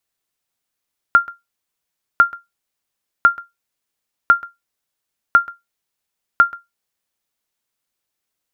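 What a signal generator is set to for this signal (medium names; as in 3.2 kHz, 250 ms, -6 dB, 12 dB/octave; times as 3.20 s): sonar ping 1.39 kHz, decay 0.18 s, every 1.05 s, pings 6, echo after 0.13 s, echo -21.5 dB -1.5 dBFS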